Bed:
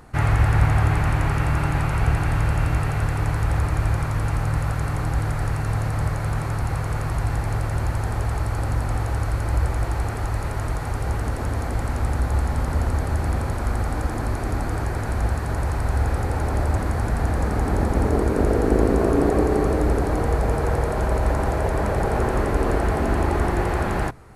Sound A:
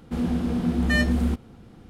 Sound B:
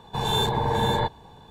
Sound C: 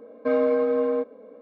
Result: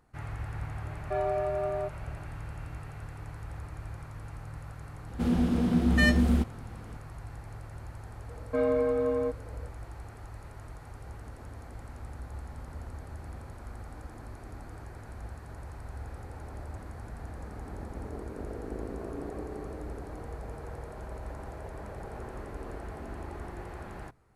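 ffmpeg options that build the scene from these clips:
ffmpeg -i bed.wav -i cue0.wav -i cue1.wav -i cue2.wav -filter_complex "[3:a]asplit=2[link_01][link_02];[0:a]volume=-19.5dB[link_03];[link_01]afreqshift=130,atrim=end=1.41,asetpts=PTS-STARTPTS,volume=-8.5dB,afade=type=in:duration=0.004:curve=hsin,afade=type=out:start_time=1.406:duration=0.004:curve=hsin,adelay=850[link_04];[1:a]atrim=end=1.89,asetpts=PTS-STARTPTS,volume=-1dB,afade=type=in:duration=0.004:curve=hsin,afade=type=out:start_time=1.886:duration=0.004:curve=hsin,adelay=5080[link_05];[link_02]atrim=end=1.41,asetpts=PTS-STARTPTS,volume=-5dB,afade=type=in:duration=0.004:curve=hsin,afade=type=out:start_time=1.406:duration=0.004:curve=hsin,adelay=8280[link_06];[link_03][link_04][link_05][link_06]amix=inputs=4:normalize=0" out.wav

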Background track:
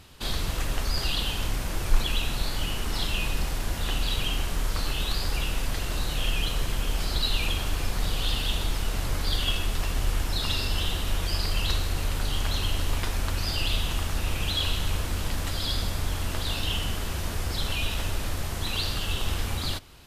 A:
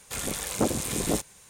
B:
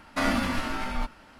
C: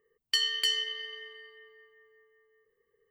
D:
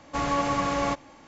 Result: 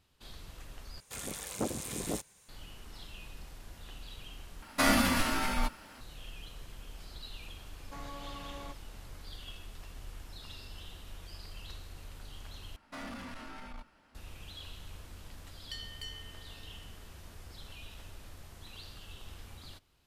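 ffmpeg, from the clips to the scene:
ffmpeg -i bed.wav -i cue0.wav -i cue1.wav -i cue2.wav -i cue3.wav -filter_complex "[2:a]asplit=2[link_01][link_02];[0:a]volume=-20dB[link_03];[link_01]aemphasis=mode=production:type=50kf[link_04];[4:a]acompressor=threshold=-27dB:ratio=6:attack=3.2:release=140:knee=1:detection=peak[link_05];[link_02]asoftclip=type=tanh:threshold=-26dB[link_06];[link_03]asplit=4[link_07][link_08][link_09][link_10];[link_07]atrim=end=1.004[link_11];[1:a]atrim=end=1.49,asetpts=PTS-STARTPTS,volume=-9dB[link_12];[link_08]atrim=start=2.486:end=4.624[link_13];[link_04]atrim=end=1.39,asetpts=PTS-STARTPTS,volume=-1dB[link_14];[link_09]atrim=start=6.006:end=12.764[link_15];[link_06]atrim=end=1.39,asetpts=PTS-STARTPTS,volume=-13dB[link_16];[link_10]atrim=start=14.146[link_17];[link_05]atrim=end=1.27,asetpts=PTS-STARTPTS,volume=-15dB,afade=type=in:duration=0.004:curve=hsin,afade=type=out:start_time=1.266:duration=0.004:curve=hsin,adelay=343098S[link_18];[3:a]atrim=end=3.1,asetpts=PTS-STARTPTS,volume=-17dB,afade=type=in:duration=0.004:curve=hsin,afade=type=out:start_time=3.096:duration=0.004:curve=hsin,adelay=15380[link_19];[link_11][link_12]acrossfade=duration=0.004:curve1=hsin:curve2=hsin[link_20];[link_20][link_13]acrossfade=duration=0.004:curve1=hsin:curve2=hsin[link_21];[link_21][link_14]acrossfade=duration=0.004:curve1=hsin:curve2=hsin[link_22];[link_22][link_15]acrossfade=duration=0.004:curve1=hsin:curve2=hsin[link_23];[link_23][link_16]acrossfade=duration=0.004:curve1=hsin:curve2=hsin[link_24];[link_24][link_17]acrossfade=duration=0.004:curve1=hsin:curve2=hsin[link_25];[link_25][link_18][link_19]amix=inputs=3:normalize=0" out.wav

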